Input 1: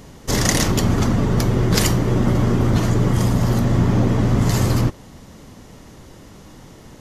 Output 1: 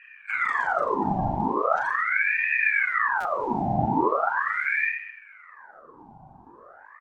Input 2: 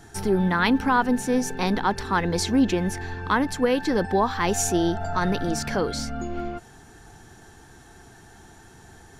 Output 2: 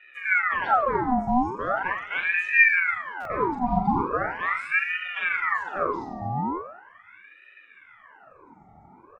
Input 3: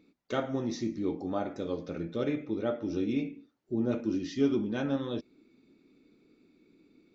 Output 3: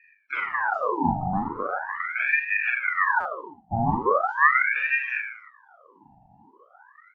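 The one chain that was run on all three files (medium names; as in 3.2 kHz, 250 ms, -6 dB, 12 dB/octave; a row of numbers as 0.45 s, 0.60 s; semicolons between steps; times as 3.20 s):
coarse spectral quantiser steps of 30 dB; band-pass filter 320 Hz, Q 3.3; reverse bouncing-ball echo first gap 40 ms, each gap 1.2×, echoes 5; buffer glitch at 3.20 s, samples 256, times 8; ring modulator with a swept carrier 1.3 kHz, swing 65%, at 0.4 Hz; normalise loudness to -24 LUFS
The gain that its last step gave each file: +1.5 dB, +7.0 dB, +13.0 dB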